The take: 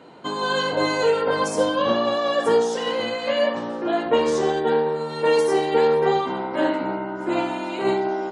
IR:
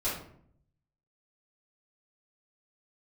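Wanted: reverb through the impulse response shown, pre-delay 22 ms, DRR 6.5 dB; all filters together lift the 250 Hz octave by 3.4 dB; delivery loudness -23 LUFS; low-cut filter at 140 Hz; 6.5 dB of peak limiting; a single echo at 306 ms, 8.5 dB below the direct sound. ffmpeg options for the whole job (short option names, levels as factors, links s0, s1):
-filter_complex "[0:a]highpass=140,equalizer=f=250:t=o:g=5,alimiter=limit=0.224:level=0:latency=1,aecho=1:1:306:0.376,asplit=2[s0][s1];[1:a]atrim=start_sample=2205,adelay=22[s2];[s1][s2]afir=irnorm=-1:irlink=0,volume=0.224[s3];[s0][s3]amix=inputs=2:normalize=0,volume=0.944"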